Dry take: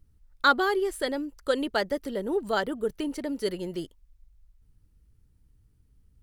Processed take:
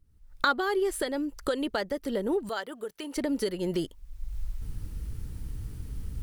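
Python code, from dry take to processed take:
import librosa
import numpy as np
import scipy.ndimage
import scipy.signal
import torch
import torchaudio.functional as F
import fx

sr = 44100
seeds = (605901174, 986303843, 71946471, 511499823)

y = fx.recorder_agc(x, sr, target_db=-15.5, rise_db_per_s=37.0, max_gain_db=30)
y = fx.highpass(y, sr, hz=870.0, slope=6, at=(2.49, 3.16))
y = y * librosa.db_to_amplitude(-5.0)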